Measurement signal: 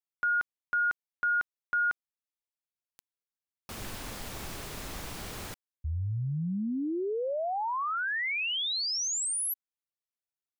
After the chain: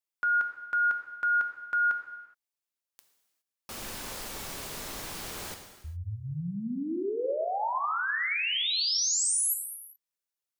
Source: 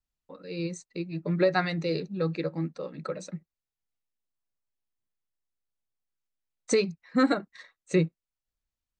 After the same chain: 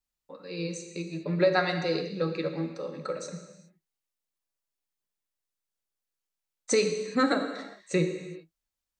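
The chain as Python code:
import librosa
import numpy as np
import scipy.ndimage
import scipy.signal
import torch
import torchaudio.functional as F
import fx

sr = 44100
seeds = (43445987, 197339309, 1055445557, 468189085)

y = fx.bass_treble(x, sr, bass_db=-6, treble_db=3)
y = fx.rev_gated(y, sr, seeds[0], gate_ms=440, shape='falling', drr_db=4.5)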